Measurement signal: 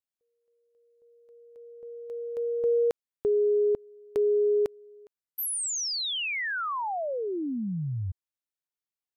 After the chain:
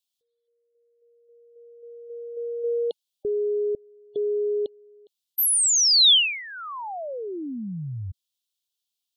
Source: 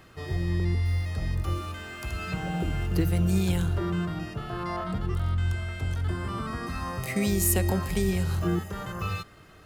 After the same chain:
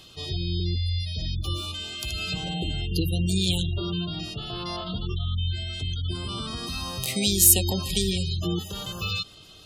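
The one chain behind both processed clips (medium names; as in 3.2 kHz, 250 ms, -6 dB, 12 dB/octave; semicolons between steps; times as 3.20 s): resonant high shelf 2.5 kHz +10.5 dB, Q 3; spectral gate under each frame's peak -25 dB strong; trim -1 dB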